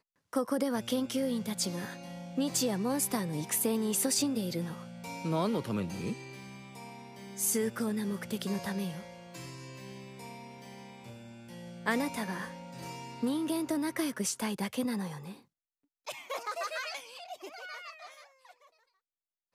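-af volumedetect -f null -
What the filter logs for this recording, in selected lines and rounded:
mean_volume: -35.2 dB
max_volume: -15.4 dB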